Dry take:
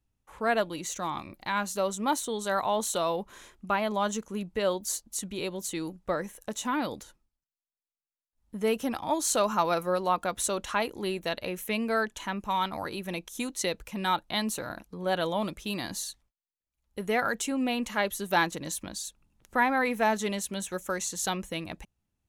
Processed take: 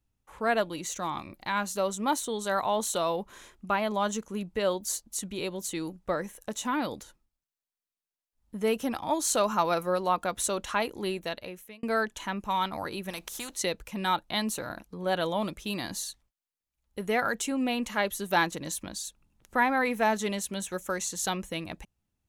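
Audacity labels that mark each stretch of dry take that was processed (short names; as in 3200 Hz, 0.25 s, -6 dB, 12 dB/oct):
11.090000	11.830000	fade out linear
13.100000	13.550000	spectral compressor 2:1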